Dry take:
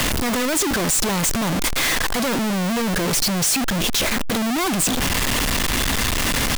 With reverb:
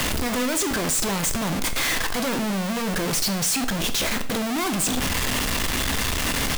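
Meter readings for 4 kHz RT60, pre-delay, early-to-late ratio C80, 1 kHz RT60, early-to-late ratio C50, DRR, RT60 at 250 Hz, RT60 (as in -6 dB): 0.45 s, 5 ms, 17.5 dB, 0.45 s, 14.0 dB, 8.0 dB, 0.50 s, 0.50 s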